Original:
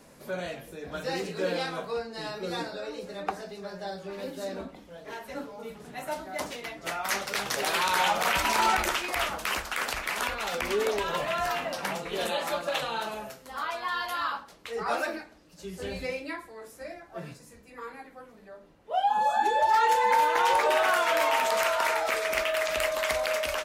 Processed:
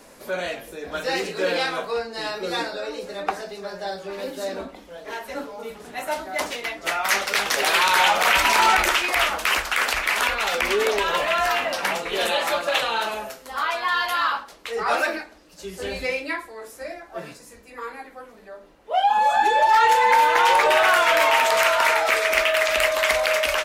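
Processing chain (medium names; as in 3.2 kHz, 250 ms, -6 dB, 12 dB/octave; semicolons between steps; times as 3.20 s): peaking EQ 130 Hz -12.5 dB 1.3 oct; in parallel at -5 dB: saturation -26.5 dBFS, distortion -10 dB; on the sum: dynamic bell 2.3 kHz, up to +4 dB, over -38 dBFS, Q 0.9; trim +3.5 dB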